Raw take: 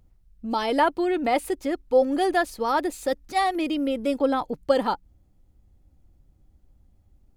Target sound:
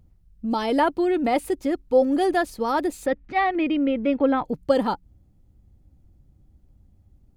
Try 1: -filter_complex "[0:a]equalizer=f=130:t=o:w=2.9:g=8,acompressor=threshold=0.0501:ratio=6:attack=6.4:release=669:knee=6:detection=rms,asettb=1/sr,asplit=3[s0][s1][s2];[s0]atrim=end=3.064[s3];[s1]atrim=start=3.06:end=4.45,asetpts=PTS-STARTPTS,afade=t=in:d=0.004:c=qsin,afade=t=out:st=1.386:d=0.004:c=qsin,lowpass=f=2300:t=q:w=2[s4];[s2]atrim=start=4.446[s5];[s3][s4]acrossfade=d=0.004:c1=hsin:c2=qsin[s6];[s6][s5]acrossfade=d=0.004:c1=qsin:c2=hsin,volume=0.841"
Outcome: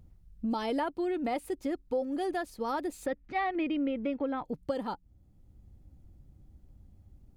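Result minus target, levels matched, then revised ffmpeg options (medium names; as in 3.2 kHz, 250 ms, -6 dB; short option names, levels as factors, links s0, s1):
compression: peak gain reduction +14.5 dB
-filter_complex "[0:a]equalizer=f=130:t=o:w=2.9:g=8,asettb=1/sr,asplit=3[s0][s1][s2];[s0]atrim=end=3.064[s3];[s1]atrim=start=3.06:end=4.45,asetpts=PTS-STARTPTS,afade=t=in:d=0.004:c=qsin,afade=t=out:st=1.386:d=0.004:c=qsin,lowpass=f=2300:t=q:w=2[s4];[s2]atrim=start=4.446[s5];[s3][s4]acrossfade=d=0.004:c1=hsin:c2=qsin[s6];[s6][s5]acrossfade=d=0.004:c1=qsin:c2=hsin,volume=0.841"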